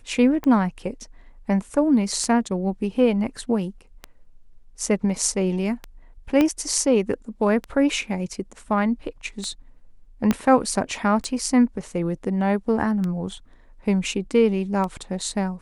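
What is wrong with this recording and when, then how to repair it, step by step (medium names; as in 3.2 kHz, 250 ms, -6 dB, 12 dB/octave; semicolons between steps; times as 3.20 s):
tick 33 1/3 rpm -16 dBFS
6.41 s: pop -8 dBFS
10.31 s: pop -7 dBFS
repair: de-click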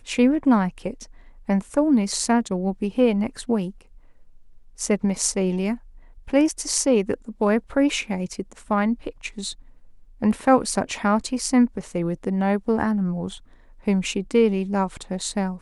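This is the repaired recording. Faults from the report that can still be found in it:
6.41 s: pop
10.31 s: pop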